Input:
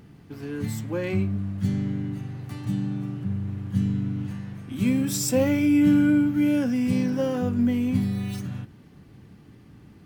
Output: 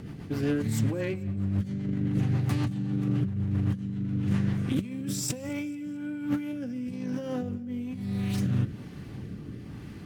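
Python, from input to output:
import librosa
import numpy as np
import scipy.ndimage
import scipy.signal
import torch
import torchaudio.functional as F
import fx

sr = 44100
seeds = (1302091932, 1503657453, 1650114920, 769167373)

p1 = fx.low_shelf(x, sr, hz=210.0, db=-11.0, at=(5.49, 6.53))
p2 = fx.over_compress(p1, sr, threshold_db=-33.0, ratio=-1.0)
p3 = fx.rotary_switch(p2, sr, hz=7.5, then_hz=1.1, switch_at_s=4.32)
p4 = p3 + fx.echo_feedback(p3, sr, ms=219, feedback_pct=51, wet_db=-22.5, dry=0)
p5 = fx.doppler_dist(p4, sr, depth_ms=0.27)
y = F.gain(torch.from_numpy(p5), 4.0).numpy()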